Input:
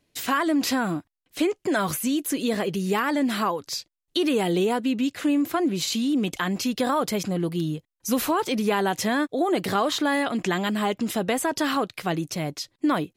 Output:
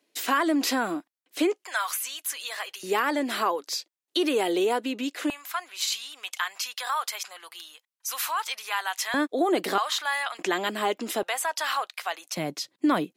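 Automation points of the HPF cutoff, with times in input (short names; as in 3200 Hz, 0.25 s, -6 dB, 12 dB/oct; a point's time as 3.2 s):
HPF 24 dB/oct
270 Hz
from 1.64 s 900 Hz
from 2.83 s 310 Hz
from 5.3 s 950 Hz
from 9.14 s 260 Hz
from 9.78 s 870 Hz
from 10.39 s 290 Hz
from 11.23 s 730 Hz
from 12.37 s 180 Hz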